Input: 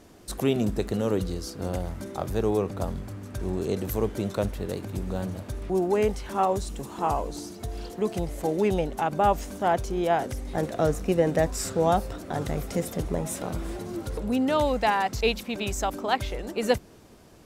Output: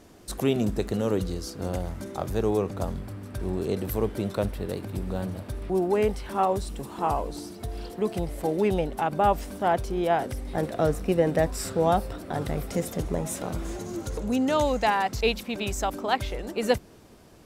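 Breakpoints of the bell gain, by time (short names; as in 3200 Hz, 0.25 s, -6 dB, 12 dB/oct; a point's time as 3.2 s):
bell 6600 Hz 0.32 oct
0 dB
from 2.97 s -7.5 dB
from 12.71 s +1 dB
from 13.65 s +10 dB
from 14.87 s -1.5 dB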